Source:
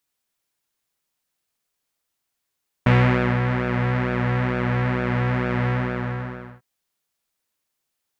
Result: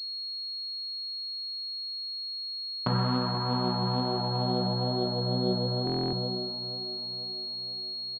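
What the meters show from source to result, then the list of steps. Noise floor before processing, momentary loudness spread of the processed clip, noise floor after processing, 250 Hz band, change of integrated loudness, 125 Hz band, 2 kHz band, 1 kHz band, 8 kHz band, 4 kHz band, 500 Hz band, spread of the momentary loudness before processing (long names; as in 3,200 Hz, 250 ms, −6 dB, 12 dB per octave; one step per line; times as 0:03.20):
−79 dBFS, 6 LU, −36 dBFS, −5.5 dB, −7.5 dB, −9.0 dB, −21.0 dB, −4.5 dB, can't be measured, +13.5 dB, −4.5 dB, 10 LU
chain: adaptive Wiener filter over 25 samples
high-pass filter 94 Hz 24 dB per octave
downward compressor, threshold −21 dBFS, peak gain reduction 9 dB
four-comb reverb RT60 0.7 s, combs from 32 ms, DRR 2.5 dB
flanger 1.2 Hz, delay 2.5 ms, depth 3.5 ms, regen +66%
high-frequency loss of the air 420 metres
repeating echo 483 ms, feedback 58%, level −10 dB
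low-pass filter sweep 1,200 Hz → 570 Hz, 0:03.02–0:05.39
buffer that repeats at 0:05.85, samples 1,024, times 11
switching amplifier with a slow clock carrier 4,300 Hz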